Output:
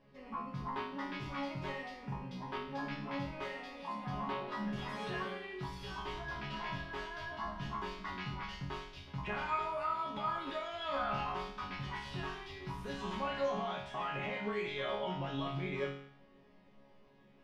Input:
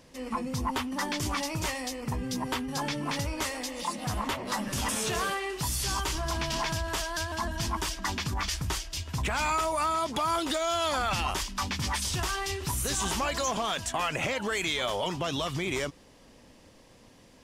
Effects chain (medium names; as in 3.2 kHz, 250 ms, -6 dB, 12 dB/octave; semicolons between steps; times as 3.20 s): distance through air 350 m; chord resonator C#3 sus4, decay 0.65 s; trim +13 dB